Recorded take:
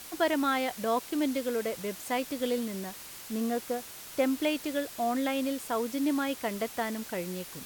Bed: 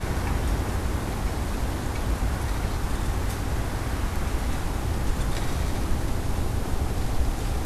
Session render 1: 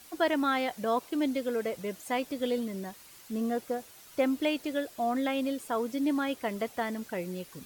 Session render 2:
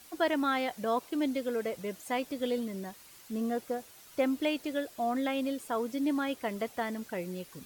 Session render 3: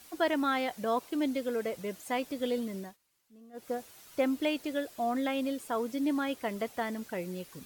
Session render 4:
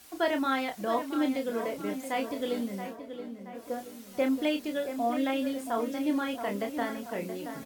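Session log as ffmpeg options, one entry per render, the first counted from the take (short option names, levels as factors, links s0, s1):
-af "afftdn=nr=9:nf=-45"
-af "volume=0.841"
-filter_complex "[0:a]asplit=3[s0][s1][s2];[s0]atrim=end=2.97,asetpts=PTS-STARTPTS,afade=t=out:st=2.73:d=0.24:c=qsin:silence=0.0794328[s3];[s1]atrim=start=2.97:end=3.53,asetpts=PTS-STARTPTS,volume=0.0794[s4];[s2]atrim=start=3.53,asetpts=PTS-STARTPTS,afade=t=in:d=0.24:c=qsin:silence=0.0794328[s5];[s3][s4][s5]concat=n=3:v=0:a=1"
-filter_complex "[0:a]asplit=2[s0][s1];[s1]adelay=30,volume=0.501[s2];[s0][s2]amix=inputs=2:normalize=0,asplit=2[s3][s4];[s4]adelay=676,lowpass=f=2600:p=1,volume=0.355,asplit=2[s5][s6];[s6]adelay=676,lowpass=f=2600:p=1,volume=0.51,asplit=2[s7][s8];[s8]adelay=676,lowpass=f=2600:p=1,volume=0.51,asplit=2[s9][s10];[s10]adelay=676,lowpass=f=2600:p=1,volume=0.51,asplit=2[s11][s12];[s12]adelay=676,lowpass=f=2600:p=1,volume=0.51,asplit=2[s13][s14];[s14]adelay=676,lowpass=f=2600:p=1,volume=0.51[s15];[s3][s5][s7][s9][s11][s13][s15]amix=inputs=7:normalize=0"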